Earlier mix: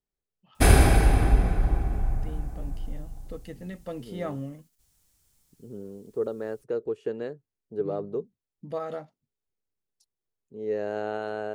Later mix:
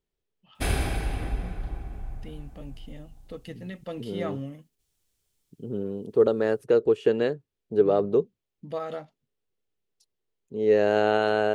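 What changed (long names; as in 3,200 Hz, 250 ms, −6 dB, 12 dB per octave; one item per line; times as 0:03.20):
second voice +9.0 dB
background −10.0 dB
master: add parametric band 3,100 Hz +6.5 dB 1.1 octaves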